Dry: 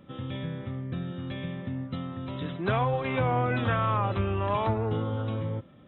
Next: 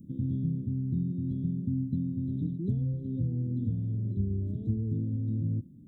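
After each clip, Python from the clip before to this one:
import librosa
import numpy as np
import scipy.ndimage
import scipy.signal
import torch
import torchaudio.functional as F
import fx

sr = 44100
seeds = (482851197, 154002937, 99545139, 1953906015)

y = scipy.signal.sosfilt(scipy.signal.cheby2(4, 70, [850.0, 2500.0], 'bandstop', fs=sr, output='sos'), x)
y = fx.low_shelf(y, sr, hz=150.0, db=-5.5)
y = fx.rider(y, sr, range_db=10, speed_s=0.5)
y = y * 10.0 ** (4.5 / 20.0)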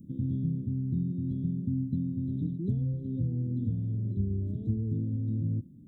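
y = x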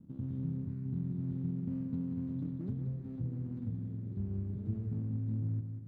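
y = scipy.signal.medfilt(x, 41)
y = fx.echo_feedback(y, sr, ms=183, feedback_pct=50, wet_db=-8)
y = fx.running_max(y, sr, window=9)
y = y * 10.0 ** (-7.5 / 20.0)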